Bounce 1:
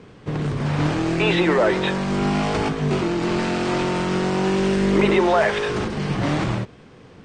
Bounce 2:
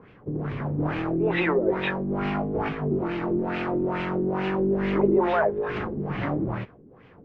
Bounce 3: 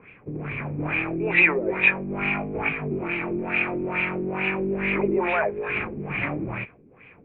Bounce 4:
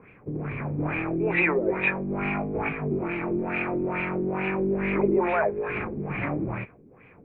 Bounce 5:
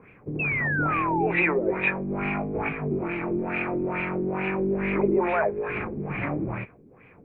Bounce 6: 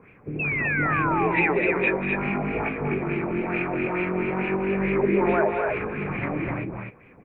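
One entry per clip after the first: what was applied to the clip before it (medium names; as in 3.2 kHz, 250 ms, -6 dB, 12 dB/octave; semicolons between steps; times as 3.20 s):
LFO low-pass sine 2.3 Hz 320–2600 Hz; trim -7 dB
resonant low-pass 2.4 kHz, resonance Q 12; trim -3 dB
peaking EQ 3 kHz -10 dB 1.3 oct; trim +1 dB
painted sound fall, 0.39–1.27 s, 750–2700 Hz -27 dBFS
loudspeakers at several distances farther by 66 m -11 dB, 87 m -4 dB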